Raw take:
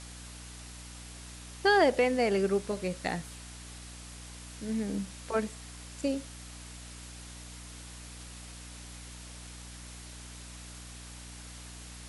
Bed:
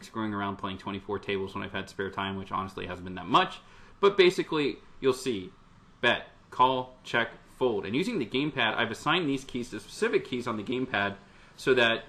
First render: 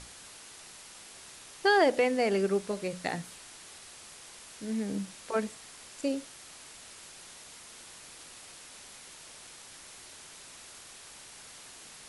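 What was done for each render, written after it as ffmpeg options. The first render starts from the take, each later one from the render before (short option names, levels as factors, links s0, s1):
-af "bandreject=f=60:t=h:w=6,bandreject=f=120:t=h:w=6,bandreject=f=180:t=h:w=6,bandreject=f=240:t=h:w=6,bandreject=f=300:t=h:w=6"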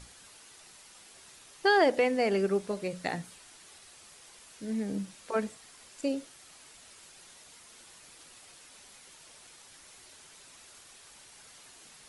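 -af "afftdn=nr=6:nf=-50"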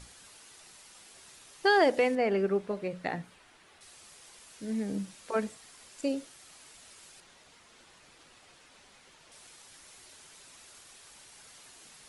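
-filter_complex "[0:a]asettb=1/sr,asplit=3[s0][s1][s2];[s0]atrim=end=2.154[s3];[s1]atrim=start=2.15:end=3.81,asetpts=PTS-STARTPTS,afade=t=in:d=0.004:c=qsin,afade=t=out:st=1.656:d=0.004:c=qsin,bass=f=250:g=-1,treble=f=4000:g=-14[s4];[s2]atrim=start=3.806[s5];[s3][s4]acrossfade=d=0.004:c1=hsin:c2=qsin[s6];[s6][s5]acrossfade=d=0.004:c1=qsin:c2=hsin,asettb=1/sr,asplit=3[s7][s8][s9];[s7]atrim=end=7.204[s10];[s8]atrim=start=7.2:end=9.32,asetpts=PTS-STARTPTS,afade=t=in:d=0.004:c=qsin,afade=t=out:st=2.116:d=0.004:c=qsin,aemphasis=mode=reproduction:type=50fm[s11];[s9]atrim=start=9.316[s12];[s10][s11]acrossfade=d=0.004:c1=hsin:c2=qsin[s13];[s13][s12]acrossfade=d=0.004:c1=qsin:c2=hsin"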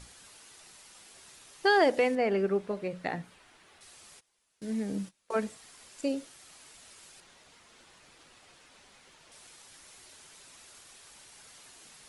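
-filter_complex "[0:a]asplit=3[s0][s1][s2];[s0]afade=t=out:st=4.19:d=0.02[s3];[s1]agate=range=0.0794:threshold=0.00447:ratio=16:release=100:detection=peak,afade=t=in:st=4.19:d=0.02,afade=t=out:st=5.33:d=0.02[s4];[s2]afade=t=in:st=5.33:d=0.02[s5];[s3][s4][s5]amix=inputs=3:normalize=0"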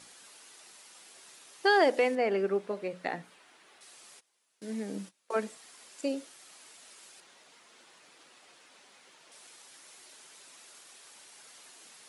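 -af "highpass=250"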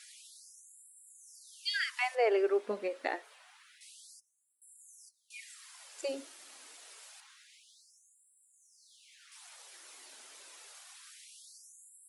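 -af "aphaser=in_gain=1:out_gain=1:delay=4.8:decay=0.22:speed=0.21:type=triangular,afftfilt=real='re*gte(b*sr/1024,210*pow(7400/210,0.5+0.5*sin(2*PI*0.27*pts/sr)))':imag='im*gte(b*sr/1024,210*pow(7400/210,0.5+0.5*sin(2*PI*0.27*pts/sr)))':win_size=1024:overlap=0.75"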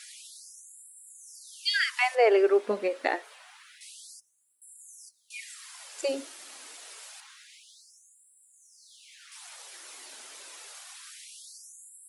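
-af "volume=2.24"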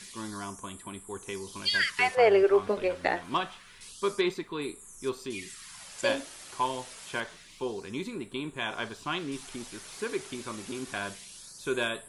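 -filter_complex "[1:a]volume=0.447[s0];[0:a][s0]amix=inputs=2:normalize=0"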